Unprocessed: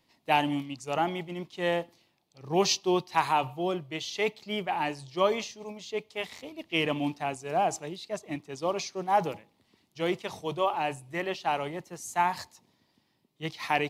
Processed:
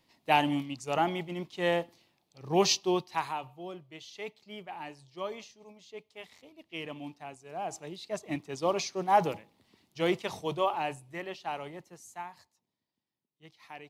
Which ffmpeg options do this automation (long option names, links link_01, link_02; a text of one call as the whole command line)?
ffmpeg -i in.wav -af "volume=13dB,afade=type=out:start_time=2.71:duration=0.7:silence=0.251189,afade=type=in:start_time=7.57:duration=0.76:silence=0.223872,afade=type=out:start_time=10.31:duration=0.93:silence=0.375837,afade=type=out:start_time=11.84:duration=0.48:silence=0.251189" out.wav